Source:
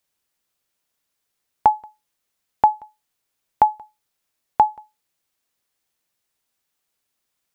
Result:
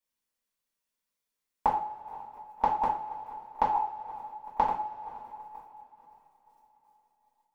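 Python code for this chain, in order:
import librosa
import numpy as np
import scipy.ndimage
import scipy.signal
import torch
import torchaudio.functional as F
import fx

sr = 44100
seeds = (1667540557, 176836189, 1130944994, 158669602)

y = fx.reverse_delay_fb(x, sr, ms=119, feedback_pct=72, wet_db=-11)
y = fx.level_steps(y, sr, step_db=22)
y = fx.echo_diffused(y, sr, ms=530, feedback_pct=43, wet_db=-13.5)
y = fx.transient(y, sr, attack_db=6, sustain_db=-12)
y = fx.rev_double_slope(y, sr, seeds[0], early_s=0.43, late_s=2.9, knee_db=-21, drr_db=-7.0)
y = y * 10.0 ** (-6.5 / 20.0)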